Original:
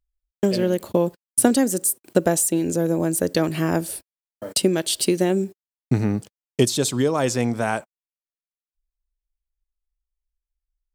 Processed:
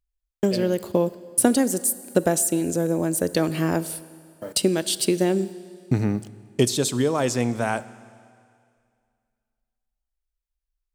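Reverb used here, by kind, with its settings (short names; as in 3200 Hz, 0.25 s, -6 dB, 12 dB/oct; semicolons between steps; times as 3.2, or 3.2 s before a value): Schroeder reverb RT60 2.2 s, combs from 25 ms, DRR 16.5 dB; gain -1.5 dB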